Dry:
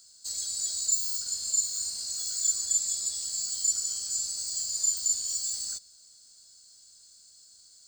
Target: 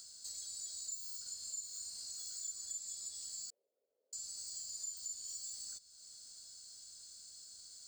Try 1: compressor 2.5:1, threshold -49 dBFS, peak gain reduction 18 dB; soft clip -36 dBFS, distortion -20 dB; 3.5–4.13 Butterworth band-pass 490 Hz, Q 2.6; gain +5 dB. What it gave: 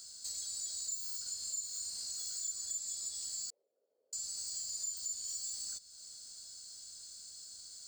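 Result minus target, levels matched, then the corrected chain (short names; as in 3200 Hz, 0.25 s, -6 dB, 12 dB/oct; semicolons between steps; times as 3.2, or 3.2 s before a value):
compressor: peak gain reduction -5.5 dB
compressor 2.5:1, threshold -58 dBFS, peak gain reduction 23 dB; soft clip -36 dBFS, distortion -29 dB; 3.5–4.13 Butterworth band-pass 490 Hz, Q 2.6; gain +5 dB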